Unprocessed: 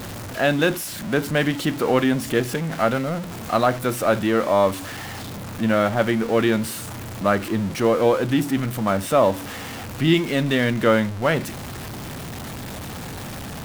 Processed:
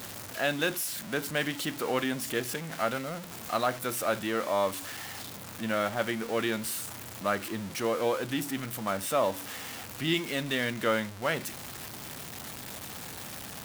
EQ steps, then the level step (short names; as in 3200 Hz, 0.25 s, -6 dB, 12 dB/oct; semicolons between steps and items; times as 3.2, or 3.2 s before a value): tilt +2 dB/oct; -8.5 dB